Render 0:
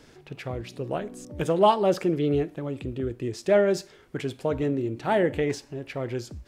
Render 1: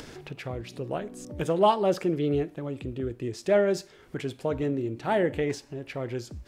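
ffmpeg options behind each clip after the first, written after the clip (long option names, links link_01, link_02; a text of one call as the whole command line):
ffmpeg -i in.wav -af "acompressor=mode=upward:threshold=-32dB:ratio=2.5,volume=-2dB" out.wav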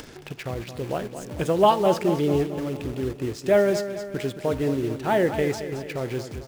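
ffmpeg -i in.wav -filter_complex "[0:a]asplit=2[link_01][link_02];[link_02]acrusher=bits=5:mix=0:aa=0.000001,volume=-6.5dB[link_03];[link_01][link_03]amix=inputs=2:normalize=0,aecho=1:1:221|442|663|884|1105|1326:0.299|0.158|0.0839|0.0444|0.0236|0.0125" out.wav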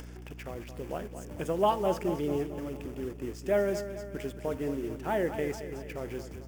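ffmpeg -i in.wav -af "equalizer=frequency=125:width_type=o:width=0.33:gain=-10,equalizer=frequency=4000:width_type=o:width=0.33:gain=-11,equalizer=frequency=16000:width_type=o:width=0.33:gain=6,aeval=exprs='val(0)+0.0158*(sin(2*PI*60*n/s)+sin(2*PI*2*60*n/s)/2+sin(2*PI*3*60*n/s)/3+sin(2*PI*4*60*n/s)/4+sin(2*PI*5*60*n/s)/5)':channel_layout=same,volume=-8dB" out.wav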